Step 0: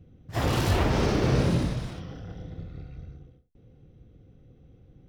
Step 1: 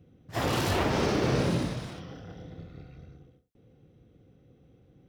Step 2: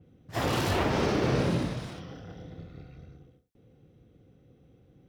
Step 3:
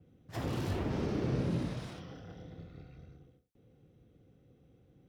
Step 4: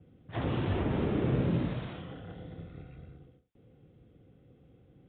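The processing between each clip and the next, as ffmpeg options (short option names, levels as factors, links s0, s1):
-af "highpass=f=180:p=1"
-af "adynamicequalizer=threshold=0.00562:dfrequency=4100:dqfactor=0.7:tfrequency=4100:tqfactor=0.7:attack=5:release=100:ratio=0.375:range=2:mode=cutabove:tftype=highshelf"
-filter_complex "[0:a]acrossover=split=390[s0][s1];[s1]acompressor=threshold=0.0126:ratio=6[s2];[s0][s2]amix=inputs=2:normalize=0,volume=0.596"
-af "aresample=8000,aresample=44100,volume=1.58"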